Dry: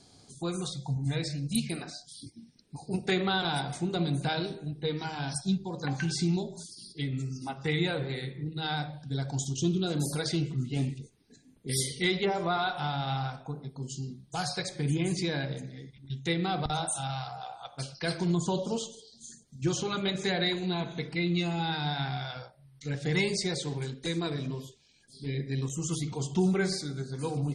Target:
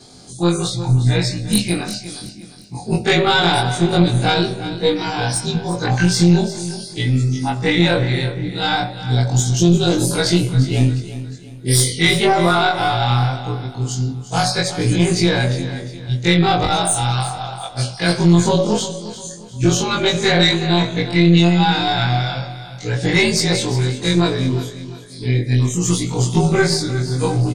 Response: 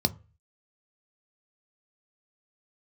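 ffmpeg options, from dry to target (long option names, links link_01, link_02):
-filter_complex "[0:a]afftfilt=real='re':imag='-im':win_size=2048:overlap=0.75,aeval=exprs='0.126*(cos(1*acos(clip(val(0)/0.126,-1,1)))-cos(1*PI/2))+0.0398*(cos(2*acos(clip(val(0)/0.126,-1,1)))-cos(2*PI/2))':channel_layout=same,apsyclip=22dB,asplit=2[link_01][link_02];[link_02]aecho=0:1:354|708|1062|1416:0.211|0.0782|0.0289|0.0107[link_03];[link_01][link_03]amix=inputs=2:normalize=0,volume=-3.5dB"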